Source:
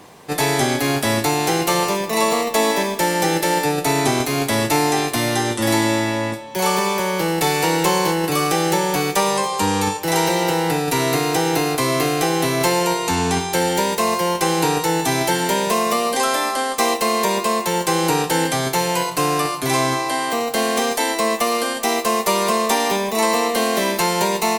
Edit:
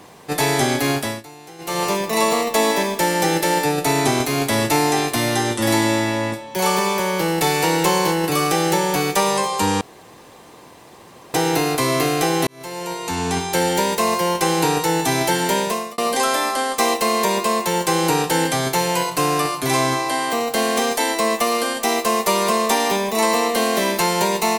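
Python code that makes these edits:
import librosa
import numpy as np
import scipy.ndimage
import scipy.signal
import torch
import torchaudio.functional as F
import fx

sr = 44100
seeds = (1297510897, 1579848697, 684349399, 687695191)

y = fx.edit(x, sr, fx.fade_down_up(start_s=0.91, length_s=0.99, db=-21.5, fade_s=0.32),
    fx.room_tone_fill(start_s=9.81, length_s=1.53),
    fx.fade_in_span(start_s=12.47, length_s=1.11),
    fx.fade_out_span(start_s=15.59, length_s=0.39), tone=tone)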